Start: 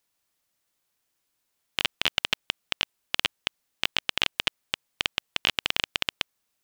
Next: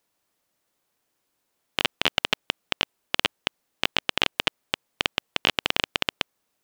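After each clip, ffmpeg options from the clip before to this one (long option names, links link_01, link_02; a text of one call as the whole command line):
ffmpeg -i in.wav -af "equalizer=frequency=410:width=0.33:gain=8" out.wav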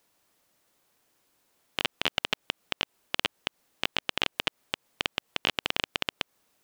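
ffmpeg -i in.wav -af "alimiter=limit=-11.5dB:level=0:latency=1:release=124,volume=5.5dB" out.wav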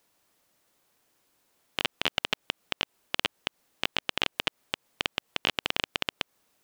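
ffmpeg -i in.wav -af anull out.wav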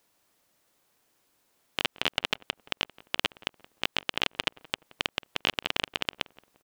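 ffmpeg -i in.wav -filter_complex "[0:a]asplit=2[link_01][link_02];[link_02]adelay=174,lowpass=frequency=1300:poles=1,volume=-18.5dB,asplit=2[link_03][link_04];[link_04]adelay=174,lowpass=frequency=1300:poles=1,volume=0.4,asplit=2[link_05][link_06];[link_06]adelay=174,lowpass=frequency=1300:poles=1,volume=0.4[link_07];[link_01][link_03][link_05][link_07]amix=inputs=4:normalize=0" out.wav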